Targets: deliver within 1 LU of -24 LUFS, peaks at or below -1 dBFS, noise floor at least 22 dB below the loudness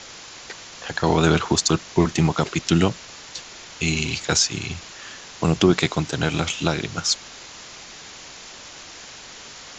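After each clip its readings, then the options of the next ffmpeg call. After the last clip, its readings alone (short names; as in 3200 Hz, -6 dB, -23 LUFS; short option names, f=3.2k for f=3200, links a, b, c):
noise floor -41 dBFS; noise floor target -44 dBFS; loudness -21.5 LUFS; peak -3.5 dBFS; loudness target -24.0 LUFS
-> -af "afftdn=nr=6:nf=-41"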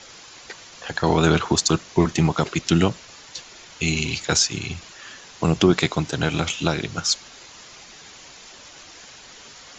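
noise floor -45 dBFS; loudness -21.5 LUFS; peak -3.5 dBFS; loudness target -24.0 LUFS
-> -af "volume=-2.5dB"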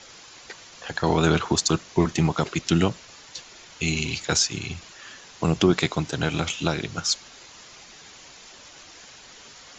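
loudness -24.0 LUFS; peak -6.0 dBFS; noise floor -47 dBFS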